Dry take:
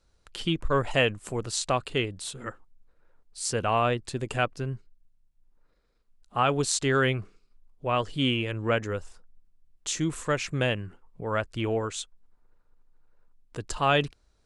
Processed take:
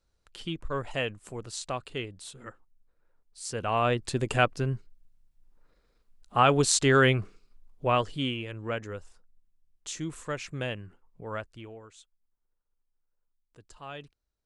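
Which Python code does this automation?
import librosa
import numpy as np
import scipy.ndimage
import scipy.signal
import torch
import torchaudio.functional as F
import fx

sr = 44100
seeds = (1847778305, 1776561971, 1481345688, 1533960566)

y = fx.gain(x, sr, db=fx.line((3.44, -7.5), (4.08, 3.0), (7.87, 3.0), (8.35, -7.0), (11.35, -7.0), (11.76, -19.0)))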